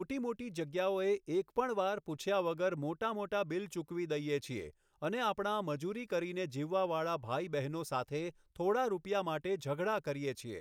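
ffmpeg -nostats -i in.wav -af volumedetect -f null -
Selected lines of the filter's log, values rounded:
mean_volume: -36.2 dB
max_volume: -19.8 dB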